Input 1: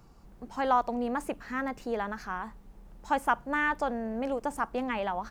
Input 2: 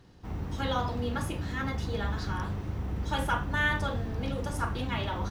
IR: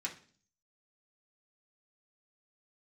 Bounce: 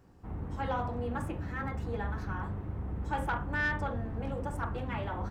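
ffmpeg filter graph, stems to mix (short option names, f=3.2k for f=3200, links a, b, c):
-filter_complex "[0:a]volume=-11dB,asplit=2[a][b];[b]volume=-4dB[c];[1:a]lowpass=1.6k,volume=-1,volume=-3dB[d];[2:a]atrim=start_sample=2205[e];[c][e]afir=irnorm=-1:irlink=0[f];[a][d][f]amix=inputs=3:normalize=0,asoftclip=type=tanh:threshold=-22.5dB"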